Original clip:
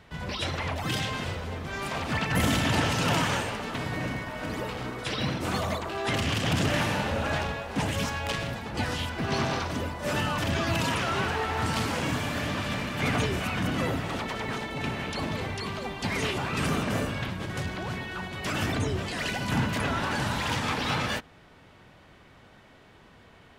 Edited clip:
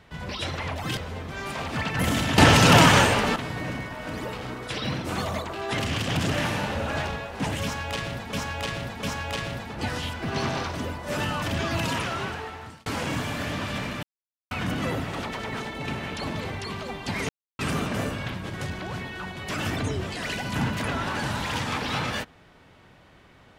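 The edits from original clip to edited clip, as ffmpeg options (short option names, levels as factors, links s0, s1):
-filter_complex "[0:a]asplit=11[s0][s1][s2][s3][s4][s5][s6][s7][s8][s9][s10];[s0]atrim=end=0.972[s11];[s1]atrim=start=1.328:end=2.742[s12];[s2]atrim=start=2.738:end=3.722,asetpts=PTS-STARTPTS,volume=3.35[s13];[s3]atrim=start=3.718:end=8.692[s14];[s4]atrim=start=7.988:end=8.692[s15];[s5]atrim=start=7.988:end=11.82,asetpts=PTS-STARTPTS,afade=t=out:st=2.942:d=0.89[s16];[s6]atrim=start=11.82:end=12.99,asetpts=PTS-STARTPTS,afade=t=in:d=0.004:c=hsin,afade=t=out:st=1.166:d=0.004:c=hsin[s17];[s7]atrim=start=12.99:end=13.47,asetpts=PTS-STARTPTS,volume=0[s18];[s8]atrim=start=13.47:end=16.25,asetpts=PTS-STARTPTS,afade=t=in:d=0.004:c=hsin,afade=t=out:st=2.776:d=0.004:c=hsin[s19];[s9]atrim=start=16.25:end=16.55,asetpts=PTS-STARTPTS,volume=0[s20];[s10]atrim=start=16.55,asetpts=PTS-STARTPTS,afade=t=in:d=0.004:c=hsin[s21];[s11][s12]acrossfade=d=0.004:c1=hsin:c2=hsin[s22];[s22][s13]acrossfade=d=0.004:c1=hsin:c2=hsin[s23];[s23][s14]acrossfade=d=0.004:c1=hsin:c2=hsin[s24];[s24][s15]acrossfade=d=0.004:c1=hsin:c2=hsin[s25];[s16][s17][s18][s19][s20][s21]concat=n=6:v=0:a=1[s26];[s25][s26]acrossfade=d=0.004:c1=hsin:c2=hsin"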